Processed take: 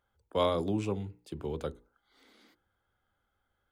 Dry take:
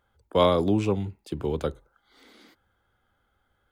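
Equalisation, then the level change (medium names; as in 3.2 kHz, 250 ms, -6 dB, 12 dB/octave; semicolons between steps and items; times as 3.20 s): hum notches 60/120/180/240/300/360/420/480 Hz; dynamic bell 8.6 kHz, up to +5 dB, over -52 dBFS, Q 1.3; -7.5 dB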